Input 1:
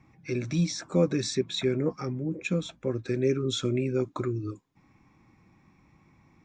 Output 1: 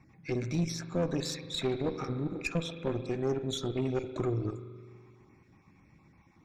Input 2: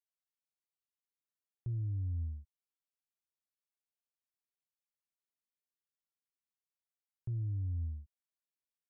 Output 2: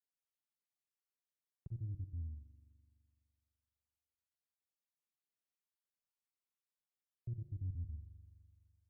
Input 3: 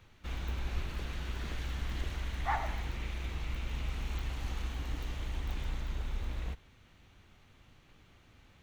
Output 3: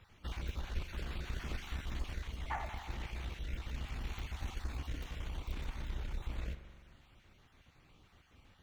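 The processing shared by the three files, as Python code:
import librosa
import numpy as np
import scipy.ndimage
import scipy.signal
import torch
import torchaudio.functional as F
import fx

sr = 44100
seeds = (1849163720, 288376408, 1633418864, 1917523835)

y = fx.spec_dropout(x, sr, seeds[0], share_pct=23)
y = fx.rider(y, sr, range_db=3, speed_s=0.5)
y = fx.rev_spring(y, sr, rt60_s=2.1, pass_ms=(42,), chirp_ms=40, drr_db=9.0)
y = fx.tube_stage(y, sr, drive_db=23.0, bias=0.6)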